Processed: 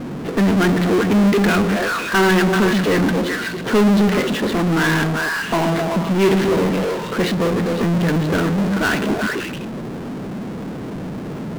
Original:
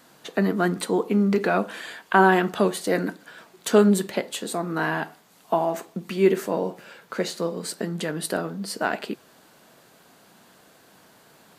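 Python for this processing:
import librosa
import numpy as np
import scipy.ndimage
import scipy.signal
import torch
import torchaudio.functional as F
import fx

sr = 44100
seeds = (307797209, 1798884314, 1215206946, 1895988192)

p1 = fx.env_lowpass(x, sr, base_hz=420.0, full_db=-15.5)
p2 = scipy.signal.sosfilt(scipy.signal.butter(4, 4000.0, 'lowpass', fs=sr, output='sos'), p1)
p3 = fx.peak_eq(p2, sr, hz=720.0, db=-12.0, octaves=1.2)
p4 = p3 + fx.echo_stepped(p3, sr, ms=128, hz=200.0, octaves=1.4, feedback_pct=70, wet_db=-4.0, dry=0)
y = fx.power_curve(p4, sr, exponent=0.35)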